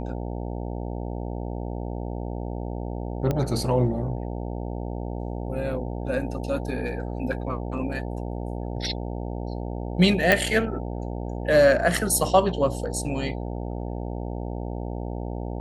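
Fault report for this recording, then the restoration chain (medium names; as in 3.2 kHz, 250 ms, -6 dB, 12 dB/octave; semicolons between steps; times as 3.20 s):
buzz 60 Hz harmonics 15 -31 dBFS
3.31 s: pop -13 dBFS
10.32 s: pop -5 dBFS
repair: de-click; de-hum 60 Hz, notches 15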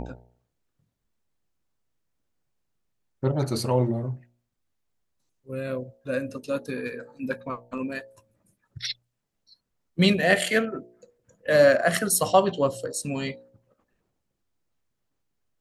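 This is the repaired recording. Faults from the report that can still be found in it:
nothing left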